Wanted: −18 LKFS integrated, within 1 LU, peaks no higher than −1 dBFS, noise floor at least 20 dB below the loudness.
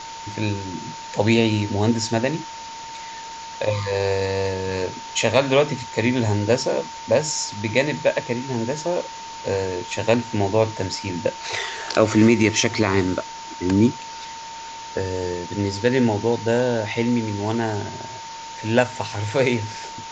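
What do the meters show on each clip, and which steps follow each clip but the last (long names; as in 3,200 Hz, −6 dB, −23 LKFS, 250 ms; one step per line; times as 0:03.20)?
interfering tone 910 Hz; level of the tone −34 dBFS; background noise floor −36 dBFS; target noise floor −42 dBFS; integrated loudness −22.0 LKFS; sample peak −2.0 dBFS; target loudness −18.0 LKFS
→ notch filter 910 Hz, Q 30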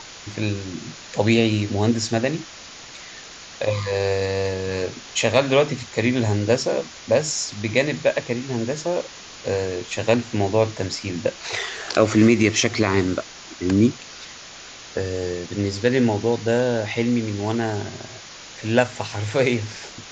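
interfering tone none found; background noise floor −41 dBFS; target noise floor −42 dBFS
→ broadband denoise 6 dB, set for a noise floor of −41 dBFS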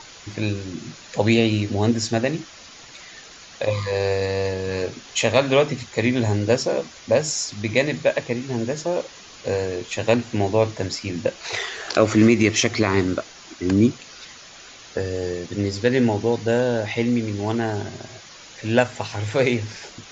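background noise floor −44 dBFS; integrated loudness −22.0 LKFS; sample peak −2.5 dBFS; target loudness −18.0 LKFS
→ level +4 dB
brickwall limiter −1 dBFS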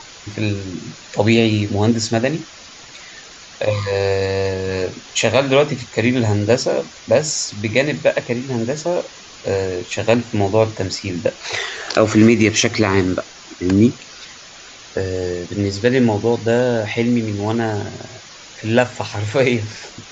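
integrated loudness −18.5 LKFS; sample peak −1.0 dBFS; background noise floor −40 dBFS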